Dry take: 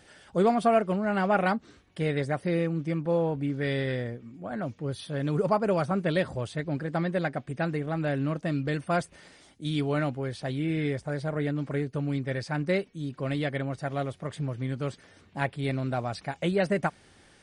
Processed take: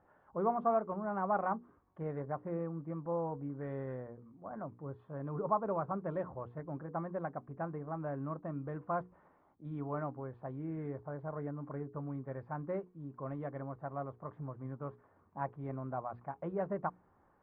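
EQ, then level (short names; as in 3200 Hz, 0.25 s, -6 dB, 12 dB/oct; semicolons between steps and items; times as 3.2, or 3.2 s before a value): ladder low-pass 1200 Hz, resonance 60%; air absorption 76 m; notches 60/120/180/240/300/360/420/480 Hz; -1.0 dB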